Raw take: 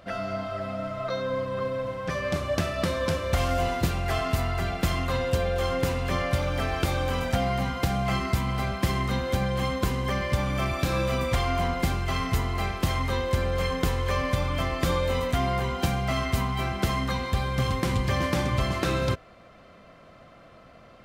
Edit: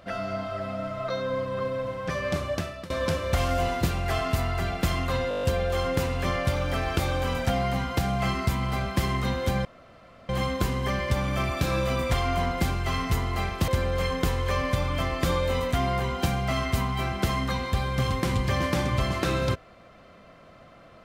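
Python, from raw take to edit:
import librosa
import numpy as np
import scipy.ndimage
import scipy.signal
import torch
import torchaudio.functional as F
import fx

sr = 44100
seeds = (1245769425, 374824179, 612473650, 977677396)

y = fx.edit(x, sr, fx.fade_out_to(start_s=2.4, length_s=0.5, floor_db=-19.5),
    fx.stutter(start_s=5.29, slice_s=0.02, count=8),
    fx.insert_room_tone(at_s=9.51, length_s=0.64),
    fx.cut(start_s=12.9, length_s=0.38), tone=tone)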